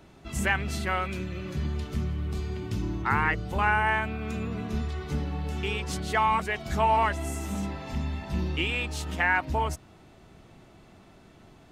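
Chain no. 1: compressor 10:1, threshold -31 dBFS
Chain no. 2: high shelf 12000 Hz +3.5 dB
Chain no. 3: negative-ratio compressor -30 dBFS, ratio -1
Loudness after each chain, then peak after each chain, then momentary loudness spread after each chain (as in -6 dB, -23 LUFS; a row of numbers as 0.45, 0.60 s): -36.0, -28.5, -31.5 LUFS; -18.0, -11.0, -18.0 dBFS; 19, 9, 5 LU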